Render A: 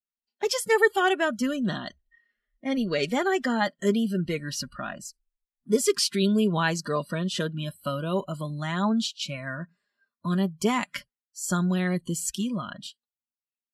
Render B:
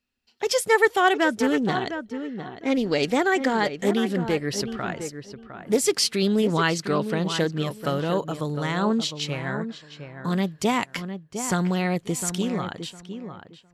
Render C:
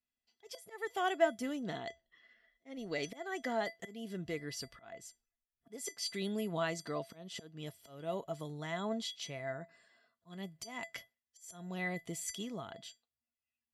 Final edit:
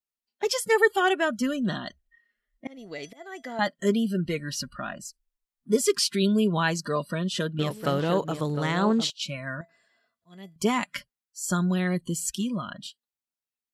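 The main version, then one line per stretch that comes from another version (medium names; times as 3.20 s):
A
2.67–3.59 s: from C
7.59–9.10 s: from B
9.61–10.56 s: from C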